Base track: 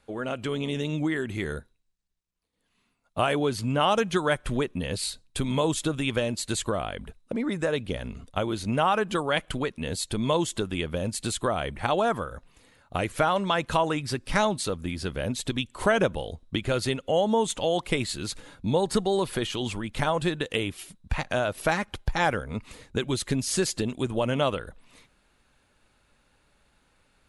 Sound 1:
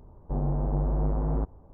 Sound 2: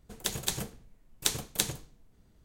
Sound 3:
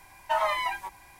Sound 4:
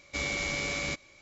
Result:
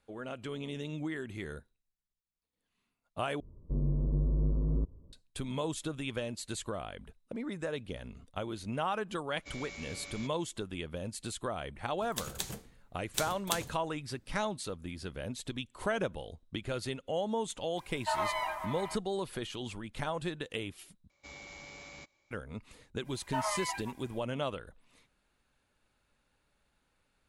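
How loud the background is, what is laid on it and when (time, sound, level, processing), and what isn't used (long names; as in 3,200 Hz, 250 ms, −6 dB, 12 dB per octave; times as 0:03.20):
base track −10 dB
0:03.40: overwrite with 1 −2.5 dB + moving average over 56 samples
0:09.32: mix in 4 −14.5 dB
0:11.92: mix in 2 −6 dB
0:17.77: mix in 3 −6.5 dB + echo whose low-pass opens from repeat to repeat 141 ms, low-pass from 750 Hz, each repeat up 1 octave, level −6 dB
0:21.10: overwrite with 4 −17.5 dB + parametric band 860 Hz +8 dB 0.45 octaves
0:23.03: mix in 3 −8.5 dB, fades 0.05 s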